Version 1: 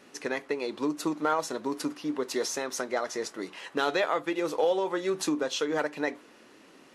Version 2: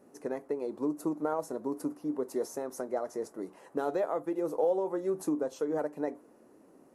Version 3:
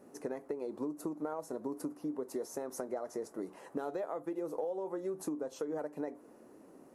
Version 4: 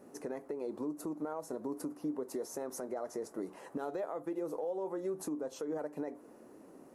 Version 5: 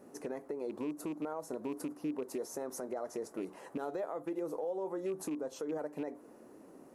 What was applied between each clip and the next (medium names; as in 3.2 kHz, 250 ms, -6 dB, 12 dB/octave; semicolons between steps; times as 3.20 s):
FFT filter 680 Hz 0 dB, 3.3 kHz -24 dB, 11 kHz -2 dB; trim -2 dB
compression 5:1, threshold -37 dBFS, peak gain reduction 12 dB; trim +2 dB
peak limiter -30.5 dBFS, peak gain reduction 6.5 dB; trim +1.5 dB
rattle on loud lows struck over -42 dBFS, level -44 dBFS